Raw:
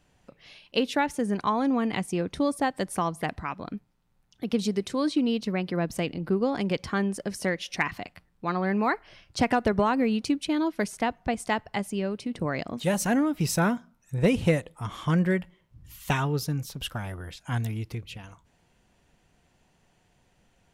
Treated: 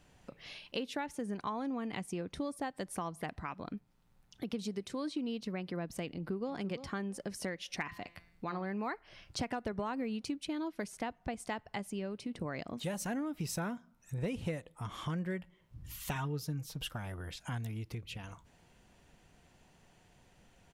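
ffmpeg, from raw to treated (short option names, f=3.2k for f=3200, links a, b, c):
-filter_complex "[0:a]asplit=2[a][b];[b]afade=t=in:st=6.12:d=0.01,afade=t=out:st=6.52:d=0.01,aecho=0:1:340|680:0.211349|0.0317023[c];[a][c]amix=inputs=2:normalize=0,asettb=1/sr,asplit=3[d][e][f];[d]atrim=end=7.824[g];[e]atrim=start=7.82:end=8.66,asetpts=PTS-STARTPTS,afade=t=in:d=0.004:c=qsin,afade=t=out:st=0.836:d=0.004:c=qsin,bandreject=f=170.6:t=h:w=4,bandreject=f=341.2:t=h:w=4,bandreject=f=511.8:t=h:w=4,bandreject=f=682.4:t=h:w=4,bandreject=f=853:t=h:w=4,bandreject=f=1.0236k:t=h:w=4,bandreject=f=1.1942k:t=h:w=4,bandreject=f=1.3648k:t=h:w=4,bandreject=f=1.5354k:t=h:w=4,bandreject=f=1.706k:t=h:w=4,bandreject=f=1.8766k:t=h:w=4,bandreject=f=2.0472k:t=h:w=4,bandreject=f=2.2178k:t=h:w=4,bandreject=f=2.3884k:t=h:w=4,bandreject=f=2.559k:t=h:w=4,bandreject=f=2.7296k:t=h:w=4,bandreject=f=2.9002k:t=h:w=4,bandreject=f=3.0708k:t=h:w=4,bandreject=f=3.2414k:t=h:w=4,bandreject=f=3.412k:t=h:w=4,bandreject=f=3.5826k:t=h:w=4,bandreject=f=3.7532k:t=h:w=4,bandreject=f=3.9238k:t=h:w=4,bandreject=f=4.0944k:t=h:w=4,bandreject=f=4.265k:t=h:w=4,bandreject=f=4.4356k:t=h:w=4,bandreject=f=4.6062k:t=h:w=4,bandreject=f=4.7768k:t=h:w=4,bandreject=f=4.9474k:t=h:w=4,bandreject=f=5.118k:t=h:w=4,bandreject=f=5.2886k:t=h:w=4,bandreject=f=5.4592k:t=h:w=4,bandreject=f=5.6298k:t=h:w=4,bandreject=f=5.8004k:t=h:w=4,bandreject=f=5.971k:t=h:w=4,bandreject=f=6.1416k:t=h:w=4,bandreject=f=6.3122k:t=h:w=4,bandreject=f=6.4828k:t=h:w=4[h];[f]atrim=start=8.656[i];[g][h]acrossfade=d=0.004:c1=hsin:c2=qsin[j];[j][i]acrossfade=d=0.004:c1=qsin:c2=hsin,asettb=1/sr,asplit=3[k][l][m];[k]atrim=end=16.154[n];[l]atrim=start=16.15:end=16.92,asetpts=PTS-STARTPTS,afade=t=in:d=0.004:c=qsin,afade=t=out:st=0.766:d=0.004:c=qsin,aecho=1:1:6.4:0.65,atrim=end_sample=33957[o];[m]atrim=start=16.916[p];[n][o]acrossfade=d=0.004:c1=hsin:c2=qsin[q];[q][p]acrossfade=d=0.004:c1=qsin:c2=hsin,acompressor=threshold=-43dB:ratio=2.5,volume=1.5dB"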